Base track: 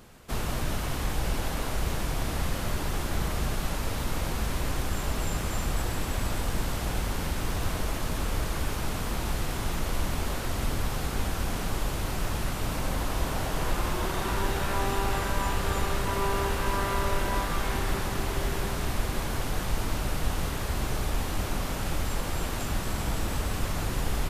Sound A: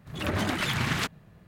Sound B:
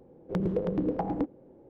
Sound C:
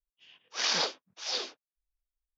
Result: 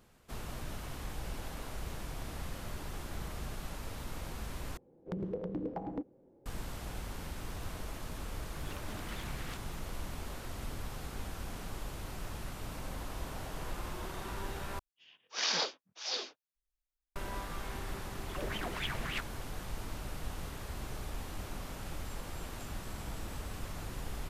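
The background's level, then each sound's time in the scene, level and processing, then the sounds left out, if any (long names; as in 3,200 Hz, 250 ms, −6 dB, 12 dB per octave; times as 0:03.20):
base track −12 dB
0:04.77: overwrite with B −9 dB
0:08.50: mix in A −4 dB + downward compressor, threshold −40 dBFS
0:14.79: overwrite with C −3.5 dB
0:18.14: mix in A −17 dB + auto-filter bell 3.5 Hz 430–3,000 Hz +16 dB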